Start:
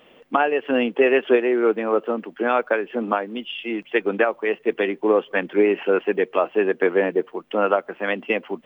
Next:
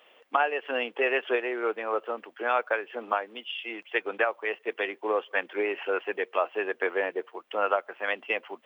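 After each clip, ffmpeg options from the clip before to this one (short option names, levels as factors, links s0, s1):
-af "highpass=620,volume=0.668"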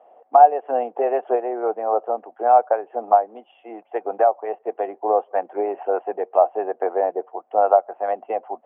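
-af "lowpass=f=740:t=q:w=7.4,volume=1.19"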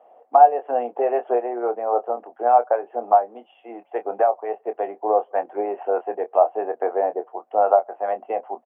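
-filter_complex "[0:a]asplit=2[s0][s1];[s1]adelay=25,volume=0.316[s2];[s0][s2]amix=inputs=2:normalize=0,volume=0.891"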